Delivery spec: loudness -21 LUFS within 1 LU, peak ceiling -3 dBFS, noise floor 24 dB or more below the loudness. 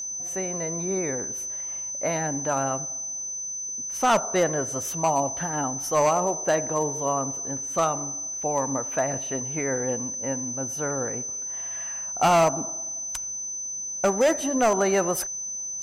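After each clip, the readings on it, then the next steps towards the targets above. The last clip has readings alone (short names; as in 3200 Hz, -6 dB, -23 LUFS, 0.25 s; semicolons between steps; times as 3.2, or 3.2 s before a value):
clipped 0.8%; flat tops at -15.0 dBFS; steady tone 6100 Hz; tone level -30 dBFS; loudness -25.5 LUFS; peak -15.0 dBFS; loudness target -21.0 LUFS
-> clip repair -15 dBFS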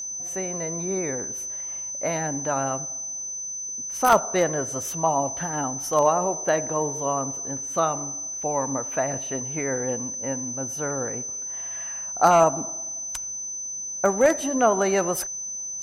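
clipped 0.0%; steady tone 6100 Hz; tone level -30 dBFS
-> notch 6100 Hz, Q 30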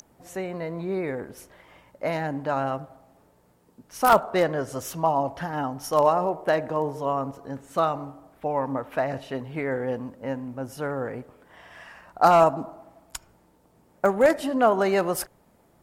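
steady tone none; loudness -25.5 LUFS; peak -5.5 dBFS; loudness target -21.0 LUFS
-> gain +4.5 dB; limiter -3 dBFS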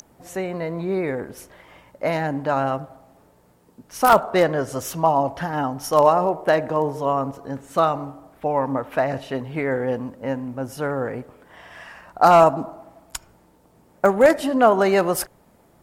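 loudness -21.0 LUFS; peak -3.0 dBFS; noise floor -57 dBFS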